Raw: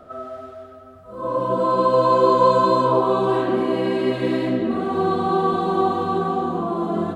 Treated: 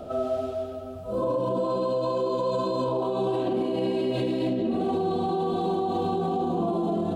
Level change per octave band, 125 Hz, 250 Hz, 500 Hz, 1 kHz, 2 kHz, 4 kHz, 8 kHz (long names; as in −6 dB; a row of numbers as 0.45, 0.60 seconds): −4.0 dB, −4.5 dB, −5.5 dB, −10.0 dB, −13.0 dB, −5.0 dB, can't be measured